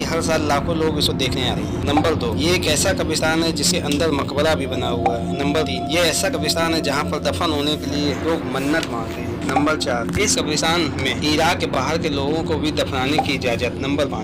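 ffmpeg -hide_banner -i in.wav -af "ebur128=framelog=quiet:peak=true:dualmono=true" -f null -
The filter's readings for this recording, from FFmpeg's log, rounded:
Integrated loudness:
  I:         -16.4 LUFS
  Threshold: -26.4 LUFS
Loudness range:
  LRA:         2.1 LU
  Threshold: -36.3 LUFS
  LRA low:   -17.6 LUFS
  LRA high:  -15.5 LUFS
True peak:
  Peak:       -7.9 dBFS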